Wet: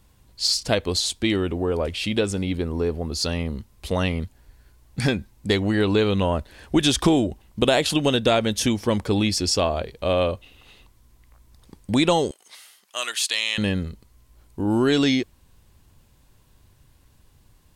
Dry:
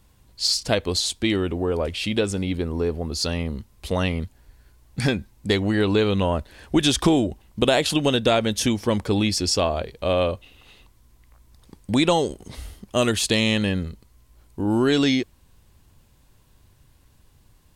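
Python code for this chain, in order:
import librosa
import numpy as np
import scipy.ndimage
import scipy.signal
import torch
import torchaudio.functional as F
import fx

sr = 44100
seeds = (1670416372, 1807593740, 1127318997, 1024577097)

y = fx.highpass(x, sr, hz=1300.0, slope=12, at=(12.31, 13.58))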